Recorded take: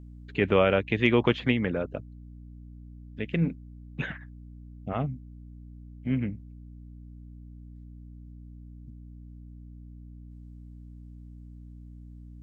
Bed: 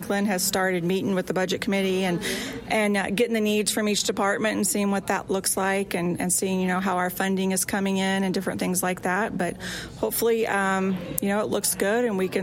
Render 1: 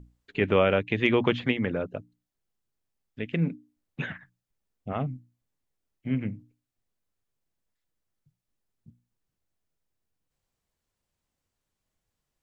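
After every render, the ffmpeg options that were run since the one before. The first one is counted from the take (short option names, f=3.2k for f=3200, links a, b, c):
-af "bandreject=f=60:t=h:w=6,bandreject=f=120:t=h:w=6,bandreject=f=180:t=h:w=6,bandreject=f=240:t=h:w=6,bandreject=f=300:t=h:w=6"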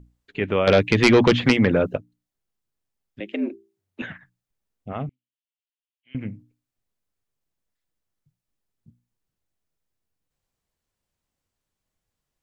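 -filter_complex "[0:a]asettb=1/sr,asplit=3[a][b][c];[a]atrim=end=0.674[d];[b]atrim=start=0.67:end=1.97,asetpts=PTS-STARTPTS,afade=t=in:d=0.004:c=qsin,afade=t=out:st=1.296:d=0.004:c=qsin,aeval=exprs='0.398*sin(PI/2*2.24*val(0)/0.398)':c=same[e];[c]atrim=start=1.966[f];[d][e]acrossfade=d=0.004:c1=hsin:c2=qsin[g];[g][f]acrossfade=d=0.004:c1=qsin:c2=hsin,asettb=1/sr,asplit=3[h][i][j];[h]atrim=end=3.204[k];[i]atrim=start=3.2:end=4.02,asetpts=PTS-STARTPTS,afade=t=in:d=0.004:c=qsin,afade=t=out:st=0.816:d=0.004:c=qsin,afreqshift=93[l];[j]atrim=start=4.016[m];[k][l]acrossfade=d=0.004:c1=hsin:c2=qsin[n];[n][m]acrossfade=d=0.004:c1=qsin:c2=hsin,asettb=1/sr,asplit=3[o][p][q];[o]atrim=end=5.094[r];[p]atrim=start=5.09:end=6.15,asetpts=PTS-STARTPTS,afade=t=in:d=0.004:c=qsin,afade=t=out:st=1.056:d=0.004:c=qsin,bandpass=f=3k:t=q:w=4.8[s];[q]atrim=start=6.146[t];[r][s]acrossfade=d=0.004:c1=hsin:c2=qsin[u];[u][t]acrossfade=d=0.004:c1=qsin:c2=hsin"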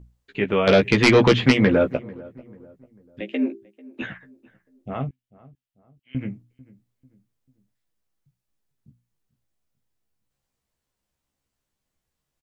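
-filter_complex "[0:a]asplit=2[a][b];[b]adelay=15,volume=-5dB[c];[a][c]amix=inputs=2:normalize=0,asplit=2[d][e];[e]adelay=443,lowpass=f=1.1k:p=1,volume=-21dB,asplit=2[f][g];[g]adelay=443,lowpass=f=1.1k:p=1,volume=0.43,asplit=2[h][i];[i]adelay=443,lowpass=f=1.1k:p=1,volume=0.43[j];[d][f][h][j]amix=inputs=4:normalize=0"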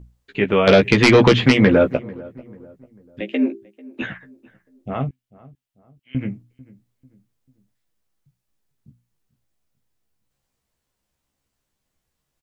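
-af "volume=4dB,alimiter=limit=-3dB:level=0:latency=1"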